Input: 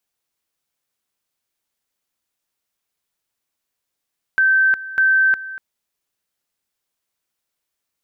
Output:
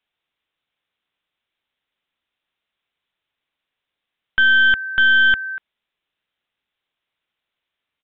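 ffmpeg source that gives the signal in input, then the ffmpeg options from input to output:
-f lavfi -i "aevalsrc='pow(10,(-11.5-16.5*gte(mod(t,0.6),0.36))/20)*sin(2*PI*1550*t)':d=1.2:s=44100"
-af "highshelf=f=2k:g=9.5,aresample=8000,aeval=exprs='clip(val(0),-1,0.15)':c=same,aresample=44100"

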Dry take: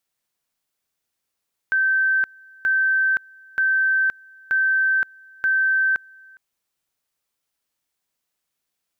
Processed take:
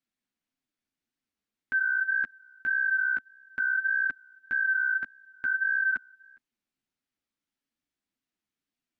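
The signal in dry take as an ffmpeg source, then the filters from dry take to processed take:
-f lavfi -i "aevalsrc='pow(10,(-16-28*gte(mod(t,0.93),0.52))/20)*sin(2*PI*1550*t)':d=4.65:s=44100"
-af "aemphasis=mode=reproduction:type=75kf,flanger=delay=7.1:depth=8.1:regen=1:speed=1.7:shape=sinusoidal,equalizer=f=125:t=o:w=1:g=-4,equalizer=f=250:t=o:w=1:g=10,equalizer=f=500:t=o:w=1:g=-7,equalizer=f=1k:t=o:w=1:g=-6"

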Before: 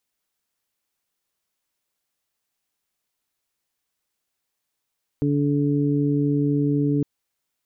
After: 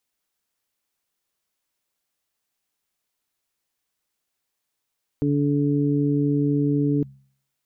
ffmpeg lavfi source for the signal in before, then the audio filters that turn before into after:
-f lavfi -i "aevalsrc='0.0794*sin(2*PI*144*t)+0.0944*sin(2*PI*288*t)+0.0398*sin(2*PI*432*t)':d=1.81:s=44100"
-af "bandreject=f=67.93:t=h:w=4,bandreject=f=135.86:t=h:w=4,bandreject=f=203.79:t=h:w=4"

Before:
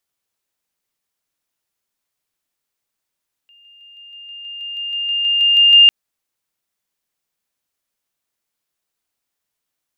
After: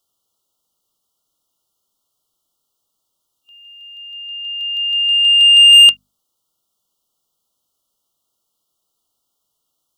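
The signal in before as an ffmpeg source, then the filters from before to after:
-f lavfi -i "aevalsrc='pow(10,(-46.5+3*floor(t/0.16))/20)*sin(2*PI*2810*t)':d=2.4:s=44100"
-af "afftfilt=real='re*(1-between(b*sr/4096,1400,2800))':imag='im*(1-between(b*sr/4096,1400,2800))':win_size=4096:overlap=0.75,bandreject=f=50:t=h:w=6,bandreject=f=100:t=h:w=6,bandreject=f=150:t=h:w=6,bandreject=f=200:t=h:w=6,bandreject=f=250:t=h:w=6,acontrast=87"

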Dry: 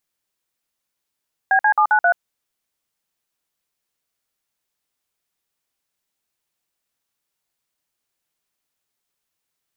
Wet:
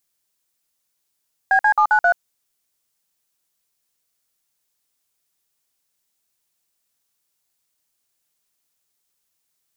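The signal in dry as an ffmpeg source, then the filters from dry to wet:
-f lavfi -i "aevalsrc='0.188*clip(min(mod(t,0.133),0.081-mod(t,0.133))/0.002,0,1)*(eq(floor(t/0.133),0)*(sin(2*PI*770*mod(t,0.133))+sin(2*PI*1633*mod(t,0.133)))+eq(floor(t/0.133),1)*(sin(2*PI*852*mod(t,0.133))+sin(2*PI*1633*mod(t,0.133)))+eq(floor(t/0.133),2)*(sin(2*PI*852*mod(t,0.133))+sin(2*PI*1209*mod(t,0.133)))+eq(floor(t/0.133),3)*(sin(2*PI*852*mod(t,0.133))+sin(2*PI*1477*mod(t,0.133)))+eq(floor(t/0.133),4)*(sin(2*PI*697*mod(t,0.133))+sin(2*PI*1477*mod(t,0.133))))':d=0.665:s=44100"
-af "bass=f=250:g=1,treble=f=4k:g=7,aeval=exprs='0.398*(cos(1*acos(clip(val(0)/0.398,-1,1)))-cos(1*PI/2))+0.00631*(cos(6*acos(clip(val(0)/0.398,-1,1)))-cos(6*PI/2))':c=same"

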